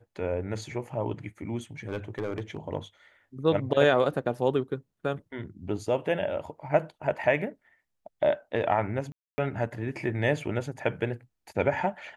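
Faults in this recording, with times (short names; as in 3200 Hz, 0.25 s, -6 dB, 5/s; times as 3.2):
1.88–2.57 clipped -26 dBFS
9.12–9.38 gap 0.26 s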